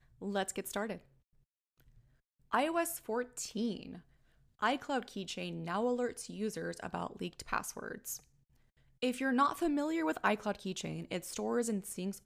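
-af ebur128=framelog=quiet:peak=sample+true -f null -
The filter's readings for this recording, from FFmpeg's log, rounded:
Integrated loudness:
  I:         -36.4 LUFS
  Threshold: -46.7 LUFS
Loudness range:
  LRA:         4.3 LU
  Threshold: -57.2 LUFS
  LRA low:   -39.0 LUFS
  LRA high:  -34.7 LUFS
Sample peak:
  Peak:      -16.2 dBFS
True peak:
  Peak:      -16.2 dBFS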